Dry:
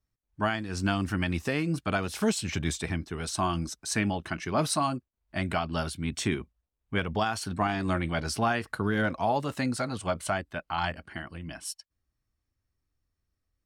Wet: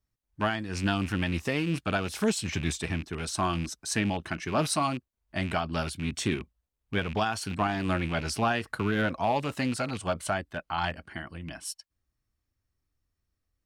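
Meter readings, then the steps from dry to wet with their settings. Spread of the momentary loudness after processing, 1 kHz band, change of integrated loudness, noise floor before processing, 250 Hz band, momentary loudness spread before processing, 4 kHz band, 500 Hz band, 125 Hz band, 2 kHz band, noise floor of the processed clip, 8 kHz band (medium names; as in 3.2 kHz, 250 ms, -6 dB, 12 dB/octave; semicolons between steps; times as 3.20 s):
9 LU, 0.0 dB, 0.0 dB, -84 dBFS, 0.0 dB, 7 LU, +1.0 dB, 0.0 dB, 0.0 dB, 0.0 dB, -83 dBFS, 0.0 dB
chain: rattle on loud lows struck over -35 dBFS, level -29 dBFS; loudspeaker Doppler distortion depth 0.12 ms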